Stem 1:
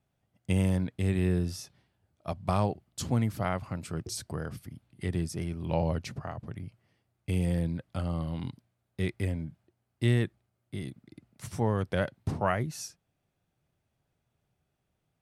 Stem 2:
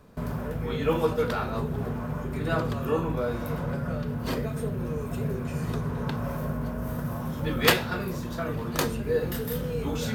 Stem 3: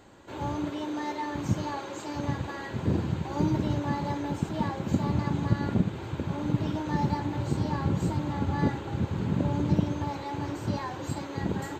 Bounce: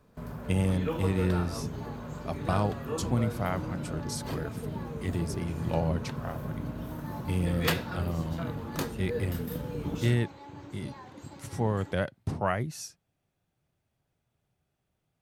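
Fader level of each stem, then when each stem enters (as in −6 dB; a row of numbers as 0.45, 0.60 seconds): −0.5, −8.0, −12.5 decibels; 0.00, 0.00, 0.15 seconds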